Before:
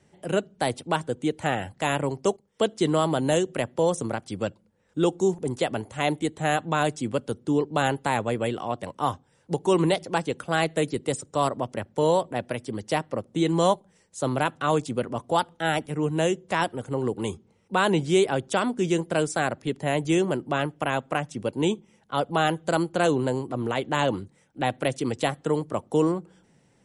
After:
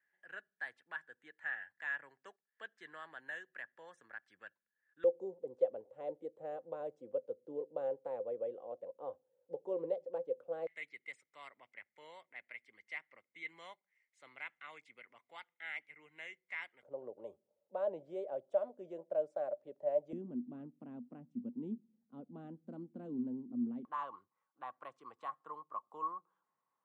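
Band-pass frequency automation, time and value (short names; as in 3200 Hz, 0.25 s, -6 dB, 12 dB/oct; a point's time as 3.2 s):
band-pass, Q 17
1700 Hz
from 5.04 s 520 Hz
from 10.67 s 2100 Hz
from 16.83 s 590 Hz
from 20.13 s 240 Hz
from 23.85 s 1100 Hz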